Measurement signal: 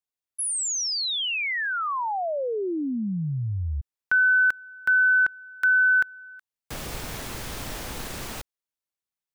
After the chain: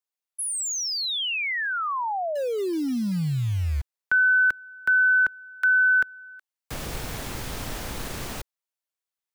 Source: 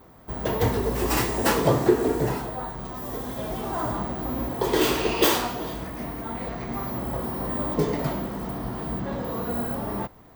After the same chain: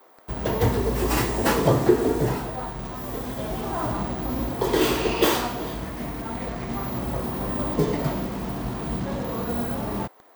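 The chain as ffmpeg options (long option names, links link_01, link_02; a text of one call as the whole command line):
ffmpeg -i in.wav -filter_complex "[0:a]lowshelf=frequency=270:gain=3,acrossover=split=360|480|3300[link_01][link_02][link_03][link_04];[link_01]acrusher=bits=6:mix=0:aa=0.000001[link_05];[link_04]asoftclip=type=tanh:threshold=-23dB[link_06];[link_05][link_02][link_03][link_06]amix=inputs=4:normalize=0" out.wav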